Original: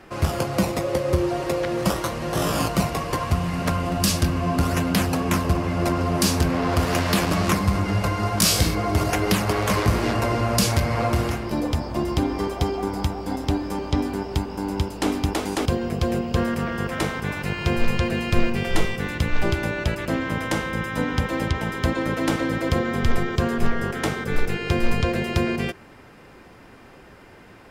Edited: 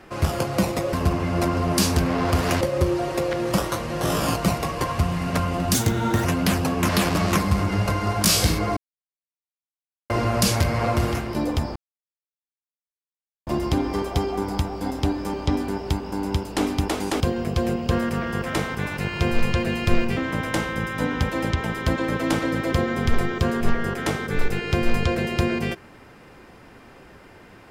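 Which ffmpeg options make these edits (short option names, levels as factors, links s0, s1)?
-filter_complex "[0:a]asplit=10[s0][s1][s2][s3][s4][s5][s6][s7][s8][s9];[s0]atrim=end=0.932[s10];[s1]atrim=start=5.368:end=7.052[s11];[s2]atrim=start=0.928:end=4.064[s12];[s3]atrim=start=4.06:end=4.73,asetpts=PTS-STARTPTS,asetrate=58212,aresample=44100,atrim=end_sample=22384,asetpts=PTS-STARTPTS[s13];[s4]atrim=start=4.726:end=5.372[s14];[s5]atrim=start=7.048:end=8.93,asetpts=PTS-STARTPTS,afade=t=out:st=1.878:d=0.004:c=hsin[s15];[s6]atrim=start=8.93:end=10.26,asetpts=PTS-STARTPTS,volume=0[s16];[s7]atrim=start=10.26:end=11.92,asetpts=PTS-STARTPTS,afade=t=in:d=0.004:c=hsin,afade=t=out:st=1.656:d=0.004:c=hsin,apad=pad_dur=1.71[s17];[s8]atrim=start=11.92:end=18.622,asetpts=PTS-STARTPTS,afade=t=in:d=0.004:c=hsin[s18];[s9]atrim=start=20.138[s19];[s10][s11]acrossfade=d=0.004:c1=hsin:c2=hsin[s20];[s20][s12]acrossfade=d=0.004:c1=hsin:c2=hsin[s21];[s21][s13]acrossfade=d=0.004:c1=hsin:c2=hsin[s22];[s22][s14]acrossfade=d=0.004:c1=hsin:c2=hsin[s23];[s15][s16][s17][s18]concat=n=4:v=0:a=1[s24];[s23][s24]acrossfade=d=0.004:c1=hsin:c2=hsin[s25];[s25][s19]acrossfade=d=0.004:c1=hsin:c2=hsin"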